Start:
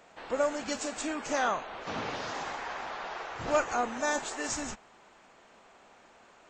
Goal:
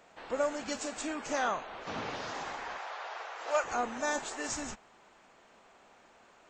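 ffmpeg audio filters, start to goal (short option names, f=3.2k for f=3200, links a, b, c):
-filter_complex "[0:a]asplit=3[a][b][c];[a]afade=t=out:st=2.77:d=0.02[d];[b]highpass=f=470:w=0.5412,highpass=f=470:w=1.3066,afade=t=in:st=2.77:d=0.02,afade=t=out:st=3.63:d=0.02[e];[c]afade=t=in:st=3.63:d=0.02[f];[d][e][f]amix=inputs=3:normalize=0,volume=-2.5dB"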